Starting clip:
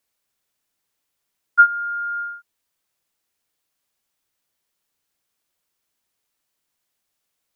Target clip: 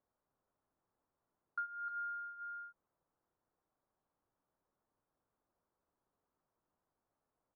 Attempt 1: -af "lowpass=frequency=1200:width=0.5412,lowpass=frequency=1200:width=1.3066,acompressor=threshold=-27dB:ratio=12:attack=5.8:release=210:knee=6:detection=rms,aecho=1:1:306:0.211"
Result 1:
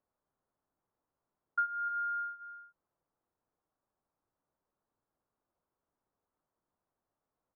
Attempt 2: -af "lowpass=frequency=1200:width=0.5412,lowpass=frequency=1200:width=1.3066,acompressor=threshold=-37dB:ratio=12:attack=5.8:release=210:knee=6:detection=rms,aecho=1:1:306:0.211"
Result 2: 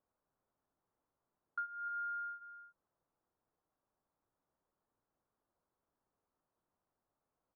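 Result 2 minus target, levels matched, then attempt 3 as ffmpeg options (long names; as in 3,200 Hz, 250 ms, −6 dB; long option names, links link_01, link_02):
echo-to-direct −7.5 dB
-af "lowpass=frequency=1200:width=0.5412,lowpass=frequency=1200:width=1.3066,acompressor=threshold=-37dB:ratio=12:attack=5.8:release=210:knee=6:detection=rms,aecho=1:1:306:0.501"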